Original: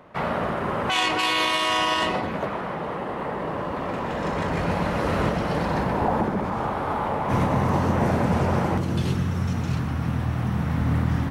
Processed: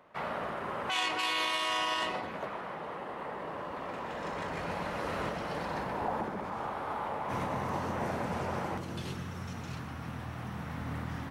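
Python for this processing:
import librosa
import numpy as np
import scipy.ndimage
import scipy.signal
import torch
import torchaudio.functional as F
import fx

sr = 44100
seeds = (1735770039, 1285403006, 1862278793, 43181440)

y = fx.low_shelf(x, sr, hz=330.0, db=-9.5)
y = y * 10.0 ** (-8.0 / 20.0)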